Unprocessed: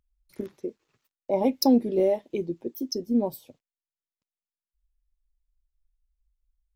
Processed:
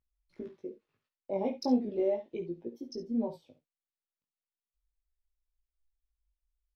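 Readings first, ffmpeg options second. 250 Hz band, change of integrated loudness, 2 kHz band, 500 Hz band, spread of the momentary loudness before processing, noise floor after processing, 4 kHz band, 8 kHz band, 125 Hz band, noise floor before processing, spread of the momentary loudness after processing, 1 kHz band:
-8.0 dB, -8.0 dB, no reading, -7.5 dB, 17 LU, under -85 dBFS, -14.5 dB, under -15 dB, -8.0 dB, under -85 dBFS, 17 LU, -8.5 dB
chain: -filter_complex "[0:a]lowpass=4000,flanger=delay=17:depth=3.7:speed=0.37,asplit=2[s0][s1];[s1]aecho=0:1:55|68:0.158|0.188[s2];[s0][s2]amix=inputs=2:normalize=0,volume=0.531"

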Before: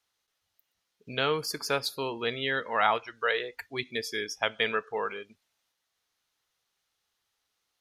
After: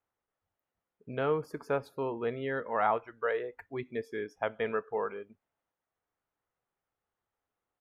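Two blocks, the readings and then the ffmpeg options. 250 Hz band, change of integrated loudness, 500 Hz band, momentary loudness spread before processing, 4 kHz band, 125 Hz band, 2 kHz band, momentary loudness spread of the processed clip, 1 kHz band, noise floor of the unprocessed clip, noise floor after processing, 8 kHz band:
0.0 dB, -4.0 dB, 0.0 dB, 9 LU, -20.5 dB, 0.0 dB, -8.5 dB, 10 LU, -3.0 dB, -81 dBFS, under -85 dBFS, under -20 dB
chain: -af "firequalizer=gain_entry='entry(590,0);entry(4400,-28);entry(7100,-22)':delay=0.05:min_phase=1"

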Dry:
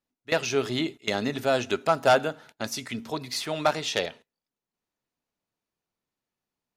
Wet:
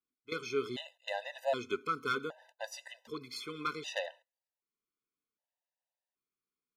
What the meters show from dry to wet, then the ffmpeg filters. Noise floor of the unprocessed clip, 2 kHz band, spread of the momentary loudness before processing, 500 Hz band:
under -85 dBFS, -9.5 dB, 11 LU, -11.5 dB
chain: -af "bass=f=250:g=-9,treble=f=4000:g=-6,afftfilt=real='re*gt(sin(2*PI*0.65*pts/sr)*(1-2*mod(floor(b*sr/1024/510),2)),0)':imag='im*gt(sin(2*PI*0.65*pts/sr)*(1-2*mod(floor(b*sr/1024/510),2)),0)':win_size=1024:overlap=0.75,volume=0.501"

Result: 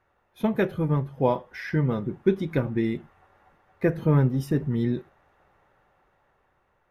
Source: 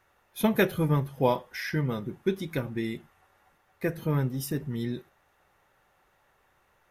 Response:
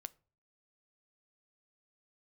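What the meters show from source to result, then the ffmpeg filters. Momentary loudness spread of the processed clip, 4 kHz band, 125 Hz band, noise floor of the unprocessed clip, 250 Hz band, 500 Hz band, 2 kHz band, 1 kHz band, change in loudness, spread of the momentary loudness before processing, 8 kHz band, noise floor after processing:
7 LU, -6.0 dB, +5.0 dB, -68 dBFS, +4.0 dB, +3.0 dB, -1.5 dB, +0.5 dB, +3.5 dB, 10 LU, under -10 dB, -69 dBFS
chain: -af "lowpass=f=1300:p=1,dynaudnorm=f=440:g=7:m=2.24"

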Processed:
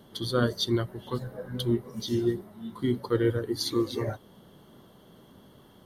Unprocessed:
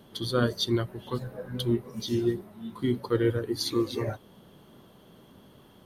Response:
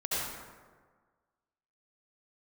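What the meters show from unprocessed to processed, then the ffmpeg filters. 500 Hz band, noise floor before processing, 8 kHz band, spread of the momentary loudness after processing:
0.0 dB, -56 dBFS, 0.0 dB, 9 LU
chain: -af "bandreject=f=2500:w=5.6"

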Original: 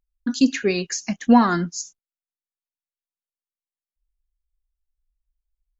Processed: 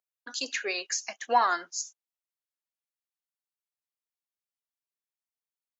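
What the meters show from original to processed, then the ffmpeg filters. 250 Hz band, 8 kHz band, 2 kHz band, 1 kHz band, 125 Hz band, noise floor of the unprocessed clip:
-28.0 dB, no reading, -3.0 dB, -3.0 dB, under -35 dB, under -85 dBFS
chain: -af "highpass=f=540:w=0.5412,highpass=f=540:w=1.3066,volume=0.708"

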